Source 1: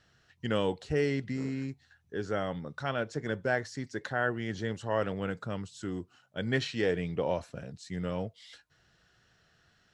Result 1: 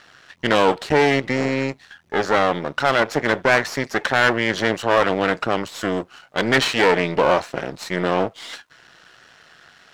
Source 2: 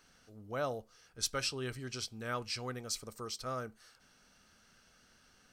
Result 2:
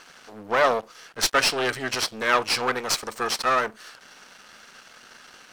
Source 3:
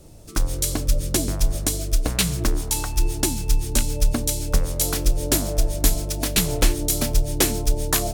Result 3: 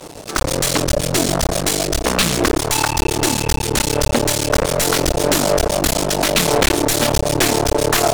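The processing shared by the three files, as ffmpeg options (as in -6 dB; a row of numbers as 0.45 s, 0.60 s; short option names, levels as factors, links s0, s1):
-filter_complex "[0:a]aeval=exprs='max(val(0),0)':c=same,asplit=2[s0][s1];[s1]highpass=f=720:p=1,volume=28.2,asoftclip=type=tanh:threshold=0.596[s2];[s0][s2]amix=inputs=2:normalize=0,lowpass=f=3100:p=1,volume=0.501,volume=1.33"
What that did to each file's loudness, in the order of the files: +13.5 LU, +15.0 LU, +6.0 LU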